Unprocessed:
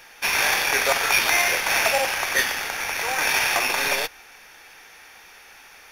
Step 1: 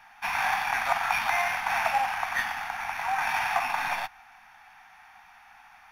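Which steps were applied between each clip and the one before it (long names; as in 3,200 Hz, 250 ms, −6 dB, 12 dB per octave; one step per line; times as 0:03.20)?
drawn EQ curve 230 Hz 0 dB, 470 Hz −28 dB, 740 Hz +9 dB, 5,700 Hz −11 dB
level −6.5 dB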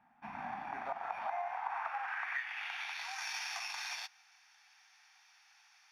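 band-pass filter sweep 240 Hz → 5,300 Hz, 0:00.50–0:03.20
downward compressor 10 to 1, threshold −39 dBFS, peak gain reduction 14 dB
level +4 dB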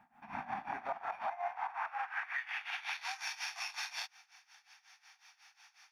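brickwall limiter −33 dBFS, peak gain reduction 8.5 dB
amplitude tremolo 5.5 Hz, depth 86%
level +6 dB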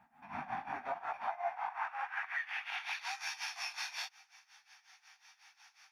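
multi-voice chorus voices 2, 0.89 Hz, delay 16 ms, depth 4.6 ms
level +3 dB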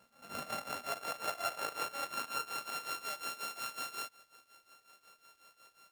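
samples sorted by size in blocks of 32 samples
surface crackle 390 per second −64 dBFS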